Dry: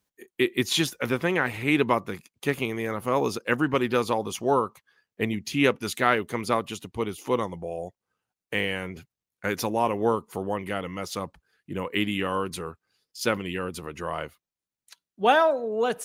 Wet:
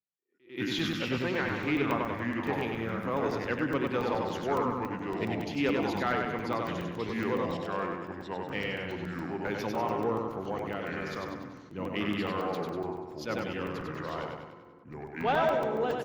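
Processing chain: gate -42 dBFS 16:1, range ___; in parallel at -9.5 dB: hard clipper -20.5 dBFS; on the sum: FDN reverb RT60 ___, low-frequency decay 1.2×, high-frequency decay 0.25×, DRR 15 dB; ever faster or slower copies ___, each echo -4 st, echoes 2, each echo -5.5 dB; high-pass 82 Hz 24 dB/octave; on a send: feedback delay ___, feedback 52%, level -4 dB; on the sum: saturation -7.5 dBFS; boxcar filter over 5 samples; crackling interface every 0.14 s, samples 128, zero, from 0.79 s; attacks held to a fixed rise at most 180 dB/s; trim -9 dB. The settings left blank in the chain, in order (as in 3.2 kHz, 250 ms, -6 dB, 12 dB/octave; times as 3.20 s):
-16 dB, 3.2 s, 101 ms, 97 ms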